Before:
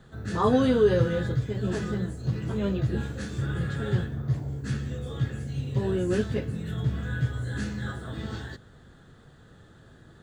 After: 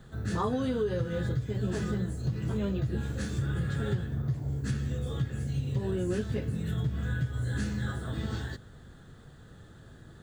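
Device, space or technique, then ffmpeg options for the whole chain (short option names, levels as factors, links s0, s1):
ASMR close-microphone chain: -af "lowshelf=f=160:g=5,acompressor=threshold=0.0562:ratio=10,highshelf=f=8600:g=8,volume=0.891"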